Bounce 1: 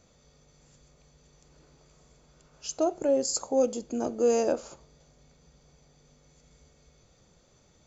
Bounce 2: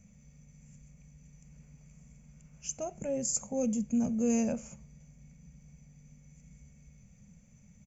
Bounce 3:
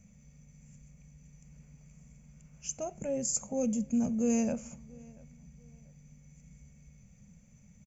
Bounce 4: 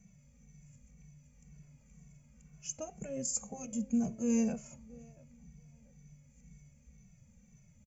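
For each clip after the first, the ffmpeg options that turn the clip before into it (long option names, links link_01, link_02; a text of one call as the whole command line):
ffmpeg -i in.wav -af "firequalizer=gain_entry='entry(100,0);entry(210,8);entry(310,-23);entry(510,-14);entry(870,-16);entry(1300,-18);entry(2300,-2);entry(3900,-27);entry(6000,-5)':delay=0.05:min_phase=1,volume=4.5dB" out.wav
ffmpeg -i in.wav -filter_complex "[0:a]asplit=2[link_01][link_02];[link_02]adelay=687,lowpass=frequency=3400:poles=1,volume=-24dB,asplit=2[link_03][link_04];[link_04]adelay=687,lowpass=frequency=3400:poles=1,volume=0.32[link_05];[link_01][link_03][link_05]amix=inputs=3:normalize=0" out.wav
ffmpeg -i in.wav -filter_complex "[0:a]asplit=2[link_01][link_02];[link_02]adelay=2.2,afreqshift=-2[link_03];[link_01][link_03]amix=inputs=2:normalize=1" out.wav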